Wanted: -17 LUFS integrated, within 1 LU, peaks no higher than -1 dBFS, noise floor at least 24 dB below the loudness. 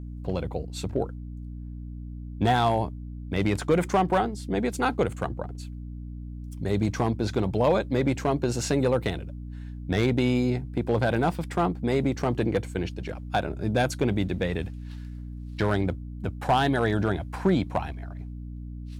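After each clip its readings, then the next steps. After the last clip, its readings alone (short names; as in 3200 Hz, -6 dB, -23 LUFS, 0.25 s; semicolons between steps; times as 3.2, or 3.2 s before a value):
clipped 0.4%; flat tops at -14.5 dBFS; hum 60 Hz; harmonics up to 300 Hz; hum level -35 dBFS; loudness -26.5 LUFS; peak -14.5 dBFS; loudness target -17.0 LUFS
-> clip repair -14.5 dBFS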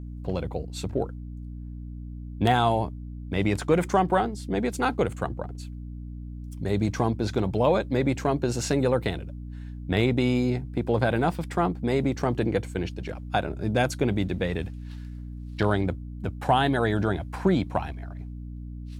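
clipped 0.0%; hum 60 Hz; harmonics up to 300 Hz; hum level -35 dBFS
-> de-hum 60 Hz, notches 5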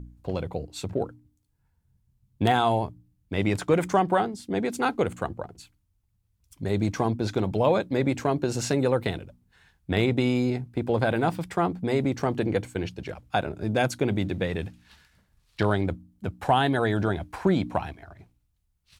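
hum none; loudness -26.5 LUFS; peak -7.5 dBFS; loudness target -17.0 LUFS
-> gain +9.5 dB; limiter -1 dBFS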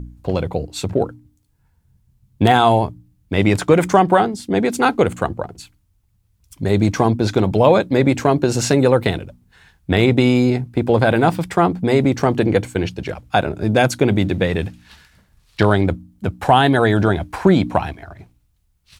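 loudness -17.5 LUFS; peak -1.0 dBFS; noise floor -62 dBFS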